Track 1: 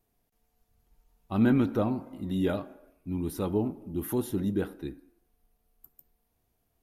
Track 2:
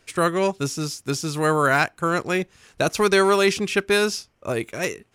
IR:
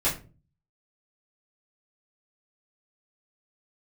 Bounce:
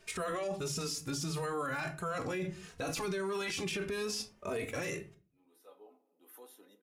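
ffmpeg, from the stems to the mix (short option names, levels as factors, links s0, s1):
-filter_complex "[0:a]highpass=f=470:w=0.5412,highpass=f=470:w=1.3066,aecho=1:1:4:0.59,adelay=2250,volume=0.141,asplit=2[s0][s1];[s1]volume=0.0944[s2];[1:a]alimiter=limit=0.126:level=0:latency=1:release=18,asplit=2[s3][s4];[s4]adelay=2.9,afreqshift=1.6[s5];[s3][s5]amix=inputs=2:normalize=1,volume=0.944,asplit=3[s6][s7][s8];[s7]volume=0.158[s9];[s8]apad=whole_len=400238[s10];[s0][s10]sidechaincompress=threshold=0.002:ratio=8:attack=48:release=954[s11];[2:a]atrim=start_sample=2205[s12];[s2][s9]amix=inputs=2:normalize=0[s13];[s13][s12]afir=irnorm=-1:irlink=0[s14];[s11][s6][s14]amix=inputs=3:normalize=0,alimiter=level_in=1.68:limit=0.0631:level=0:latency=1:release=11,volume=0.596"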